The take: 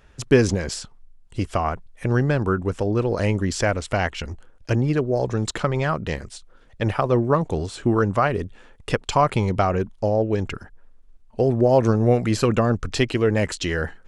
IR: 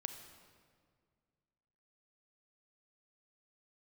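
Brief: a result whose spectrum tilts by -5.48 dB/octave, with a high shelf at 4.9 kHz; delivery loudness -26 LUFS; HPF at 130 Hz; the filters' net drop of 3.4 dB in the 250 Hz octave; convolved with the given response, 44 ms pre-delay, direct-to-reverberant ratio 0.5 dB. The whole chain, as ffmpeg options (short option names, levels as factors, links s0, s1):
-filter_complex "[0:a]highpass=130,equalizer=f=250:t=o:g=-4,highshelf=f=4900:g=-5.5,asplit=2[s0][s1];[1:a]atrim=start_sample=2205,adelay=44[s2];[s1][s2]afir=irnorm=-1:irlink=0,volume=1.19[s3];[s0][s3]amix=inputs=2:normalize=0,volume=0.596"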